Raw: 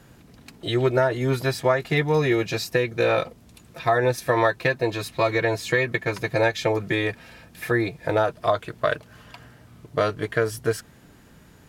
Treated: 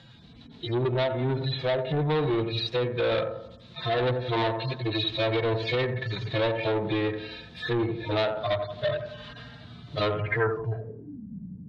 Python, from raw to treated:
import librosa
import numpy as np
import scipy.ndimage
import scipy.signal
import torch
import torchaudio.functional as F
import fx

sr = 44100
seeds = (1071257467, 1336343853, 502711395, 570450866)

p1 = fx.hpss_only(x, sr, part='harmonic')
p2 = fx.env_lowpass_down(p1, sr, base_hz=1300.0, full_db=-20.5)
p3 = fx.rider(p2, sr, range_db=10, speed_s=2.0)
p4 = p2 + F.gain(torch.from_numpy(p3), -1.0).numpy()
p5 = fx.echo_bbd(p4, sr, ms=88, stages=1024, feedback_pct=45, wet_db=-10)
p6 = 10.0 ** (-18.5 / 20.0) * np.tanh(p5 / 10.0 ** (-18.5 / 20.0))
p7 = fx.filter_sweep_lowpass(p6, sr, from_hz=3800.0, to_hz=210.0, start_s=10.1, end_s=11.23, q=7.0)
y = F.gain(torch.from_numpy(p7), -3.5).numpy()